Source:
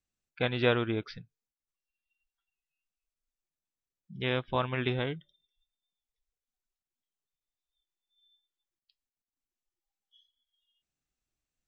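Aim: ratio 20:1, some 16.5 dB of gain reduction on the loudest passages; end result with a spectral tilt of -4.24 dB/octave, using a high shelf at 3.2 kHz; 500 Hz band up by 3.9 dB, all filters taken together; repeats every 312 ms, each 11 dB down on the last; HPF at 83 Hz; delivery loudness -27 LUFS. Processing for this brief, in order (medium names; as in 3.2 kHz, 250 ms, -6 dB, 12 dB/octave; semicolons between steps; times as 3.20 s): high-pass 83 Hz; peaking EQ 500 Hz +4.5 dB; treble shelf 3.2 kHz +3 dB; compression 20:1, threshold -33 dBFS; feedback delay 312 ms, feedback 28%, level -11 dB; trim +13 dB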